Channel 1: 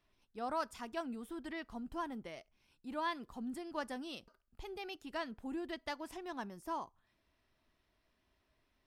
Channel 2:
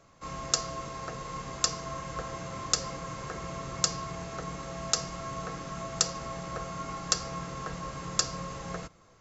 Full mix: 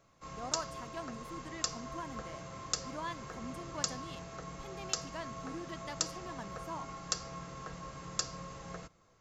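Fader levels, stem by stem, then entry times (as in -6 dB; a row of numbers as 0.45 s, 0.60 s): -3.5 dB, -7.5 dB; 0.00 s, 0.00 s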